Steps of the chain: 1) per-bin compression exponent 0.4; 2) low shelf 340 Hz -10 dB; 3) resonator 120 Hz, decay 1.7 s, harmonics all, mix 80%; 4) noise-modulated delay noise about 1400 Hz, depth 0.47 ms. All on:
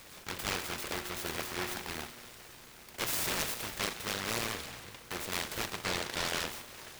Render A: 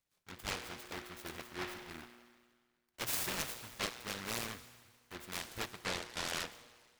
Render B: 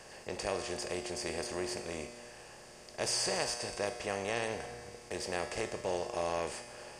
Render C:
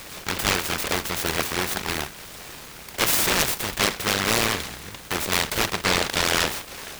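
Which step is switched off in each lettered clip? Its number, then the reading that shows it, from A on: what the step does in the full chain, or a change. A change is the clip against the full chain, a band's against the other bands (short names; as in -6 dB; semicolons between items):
1, momentary loudness spread change +1 LU; 4, 500 Hz band +8.0 dB; 3, loudness change +12.5 LU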